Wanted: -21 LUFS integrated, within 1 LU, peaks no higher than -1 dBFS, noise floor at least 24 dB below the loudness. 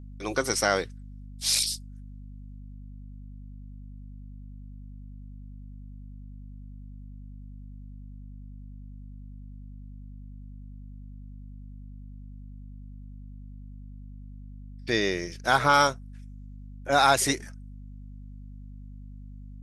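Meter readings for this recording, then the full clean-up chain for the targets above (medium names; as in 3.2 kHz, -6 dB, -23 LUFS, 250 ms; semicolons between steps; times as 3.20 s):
hum 50 Hz; highest harmonic 250 Hz; hum level -40 dBFS; loudness -25.0 LUFS; peak level -7.0 dBFS; loudness target -21.0 LUFS
-> hum notches 50/100/150/200/250 Hz; trim +4 dB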